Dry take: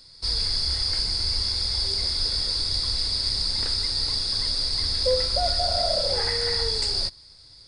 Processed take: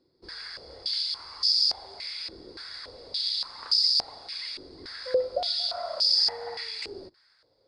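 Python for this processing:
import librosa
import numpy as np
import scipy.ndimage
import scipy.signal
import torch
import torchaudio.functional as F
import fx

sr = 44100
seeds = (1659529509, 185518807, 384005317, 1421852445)

y = fx.filter_held_bandpass(x, sr, hz=3.5, low_hz=350.0, high_hz=5100.0)
y = y * 10.0 ** (5.5 / 20.0)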